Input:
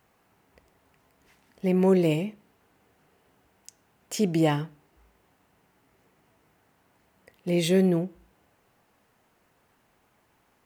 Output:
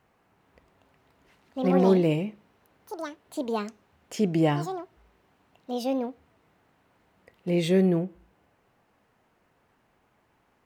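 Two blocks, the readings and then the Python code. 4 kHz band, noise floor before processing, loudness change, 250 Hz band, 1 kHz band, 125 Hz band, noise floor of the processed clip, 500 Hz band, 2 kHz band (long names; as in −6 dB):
−2.0 dB, −67 dBFS, −1.5 dB, +0.5 dB, +4.0 dB, 0.0 dB, −68 dBFS, +1.0 dB, −0.5 dB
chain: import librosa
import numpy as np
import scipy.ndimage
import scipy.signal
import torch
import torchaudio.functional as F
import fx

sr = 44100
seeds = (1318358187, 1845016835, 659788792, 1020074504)

y = fx.high_shelf(x, sr, hz=5000.0, db=-10.5)
y = fx.echo_pitch(y, sr, ms=408, semitones=6, count=2, db_per_echo=-6.0)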